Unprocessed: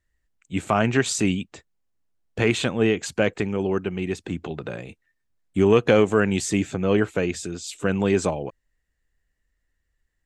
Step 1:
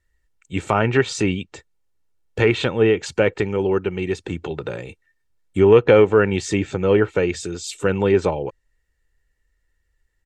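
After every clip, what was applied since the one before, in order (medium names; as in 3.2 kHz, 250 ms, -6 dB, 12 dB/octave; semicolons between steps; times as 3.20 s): low-pass that closes with the level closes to 2.9 kHz, closed at -16.5 dBFS; comb 2.2 ms, depth 43%; trim +3 dB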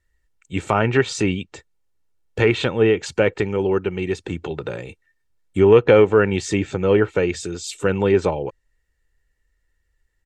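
no audible change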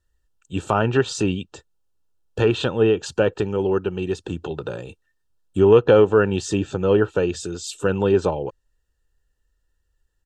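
Butterworth band-stop 2.1 kHz, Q 2.5; trim -1 dB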